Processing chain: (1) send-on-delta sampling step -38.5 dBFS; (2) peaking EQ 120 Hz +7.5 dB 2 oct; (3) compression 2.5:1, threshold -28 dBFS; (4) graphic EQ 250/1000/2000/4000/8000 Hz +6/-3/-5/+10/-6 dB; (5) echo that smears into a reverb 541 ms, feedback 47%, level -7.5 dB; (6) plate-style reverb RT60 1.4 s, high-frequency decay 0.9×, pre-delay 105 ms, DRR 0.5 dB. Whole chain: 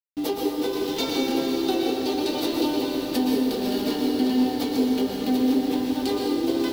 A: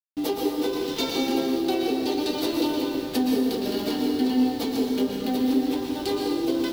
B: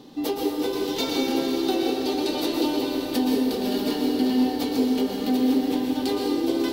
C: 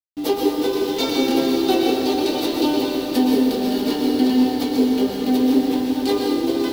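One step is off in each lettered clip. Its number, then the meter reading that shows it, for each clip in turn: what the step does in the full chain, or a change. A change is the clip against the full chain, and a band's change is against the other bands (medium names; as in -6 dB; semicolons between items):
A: 5, echo-to-direct 1.0 dB to -0.5 dB; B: 1, distortion -18 dB; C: 3, mean gain reduction 3.5 dB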